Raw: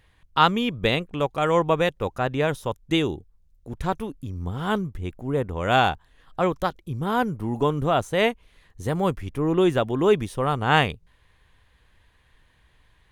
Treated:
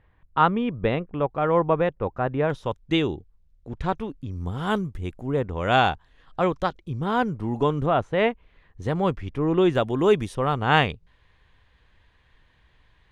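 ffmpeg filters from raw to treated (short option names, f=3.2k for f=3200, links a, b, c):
-af "asetnsamples=n=441:p=0,asendcmd='2.5 lowpass f 4300;4.31 lowpass f 11000;5.26 lowpass f 5700;7.86 lowpass f 2400;8.82 lowpass f 4500;9.75 lowpass f 9600;10.35 lowpass f 5200',lowpass=1.6k"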